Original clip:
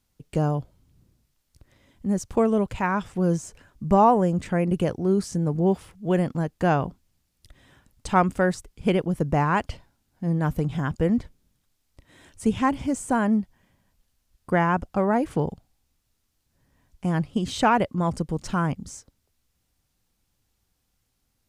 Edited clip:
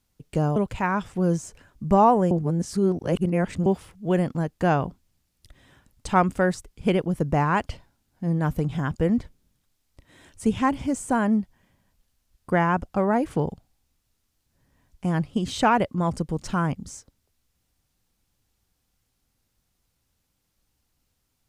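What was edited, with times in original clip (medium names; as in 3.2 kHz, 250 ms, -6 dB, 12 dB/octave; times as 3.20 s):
0.56–2.56 s: delete
4.31–5.66 s: reverse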